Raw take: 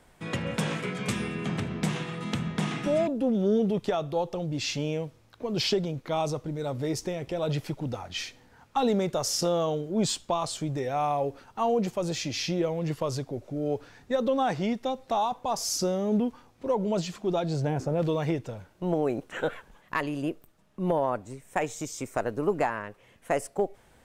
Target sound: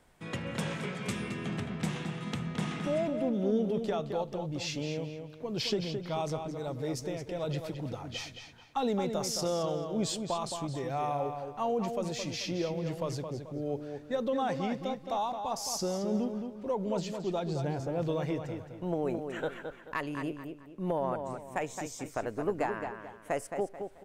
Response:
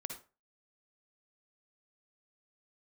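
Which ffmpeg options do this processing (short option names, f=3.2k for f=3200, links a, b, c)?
-filter_complex "[0:a]asplit=2[a][b];[b]adelay=218,lowpass=f=4.1k:p=1,volume=-6.5dB,asplit=2[c][d];[d]adelay=218,lowpass=f=4.1k:p=1,volume=0.35,asplit=2[e][f];[f]adelay=218,lowpass=f=4.1k:p=1,volume=0.35,asplit=2[g][h];[h]adelay=218,lowpass=f=4.1k:p=1,volume=0.35[i];[a][c][e][g][i]amix=inputs=5:normalize=0,volume=-5.5dB"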